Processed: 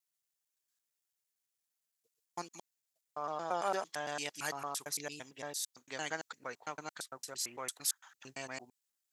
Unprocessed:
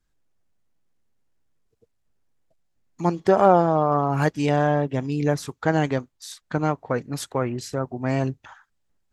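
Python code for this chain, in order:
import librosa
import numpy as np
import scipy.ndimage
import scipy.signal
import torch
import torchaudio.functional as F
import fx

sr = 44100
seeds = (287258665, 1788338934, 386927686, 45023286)

y = fx.block_reorder(x, sr, ms=113.0, group=7)
y = np.diff(y, prepend=0.0)
y = y * 10.0 ** (2.0 / 20.0)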